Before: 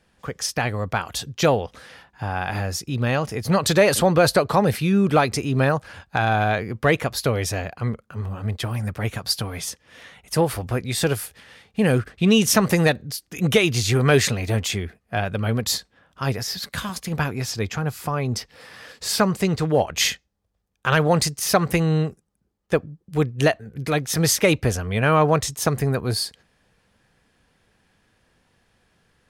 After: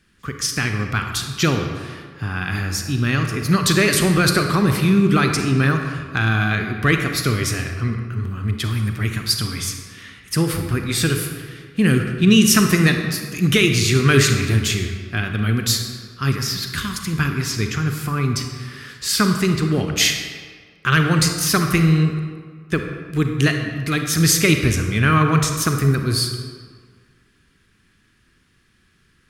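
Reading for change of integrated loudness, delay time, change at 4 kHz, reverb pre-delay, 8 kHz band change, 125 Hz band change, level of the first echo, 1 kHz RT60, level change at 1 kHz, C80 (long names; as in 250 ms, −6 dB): +3.0 dB, no echo audible, +4.5 dB, 32 ms, +4.0 dB, +5.0 dB, no echo audible, 1.8 s, −1.0 dB, 6.5 dB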